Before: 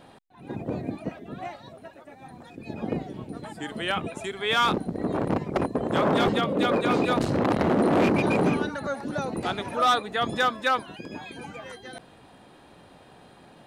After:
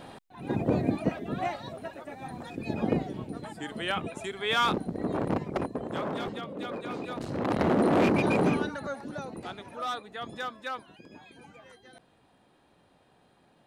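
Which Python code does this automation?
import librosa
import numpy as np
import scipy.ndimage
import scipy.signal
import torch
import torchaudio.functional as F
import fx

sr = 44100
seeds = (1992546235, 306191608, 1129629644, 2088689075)

y = fx.gain(x, sr, db=fx.line((2.57, 5.0), (3.62, -3.0), (5.39, -3.0), (6.32, -13.0), (7.14, -13.0), (7.62, -2.0), (8.56, -2.0), (9.6, -12.0)))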